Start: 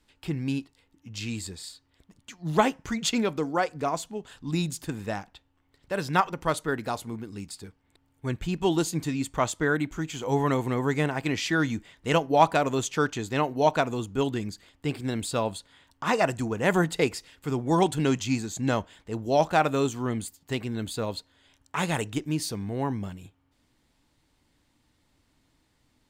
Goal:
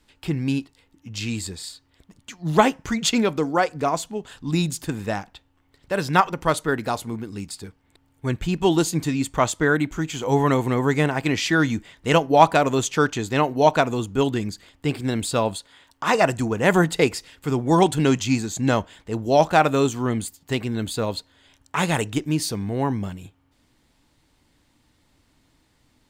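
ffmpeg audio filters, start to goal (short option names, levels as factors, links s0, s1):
-filter_complex "[0:a]asettb=1/sr,asplit=3[s0][s1][s2];[s0]atrim=end=15.554[s3];[s1]atrim=start=15.55:end=16.15,asetpts=PTS-STARTPTS,afade=t=in:d=0.004:c=qsin,afade=t=out:st=0.596:d=0.004:c=qsin,bass=f=250:g=-7,treble=f=4000:g=1[s4];[s2]atrim=start=16.146[s5];[s3][s4]acrossfade=d=0.004:c1=hsin:c2=qsin[s6];[s6][s5]acrossfade=d=0.004:c1=qsin:c2=hsin,volume=1.88"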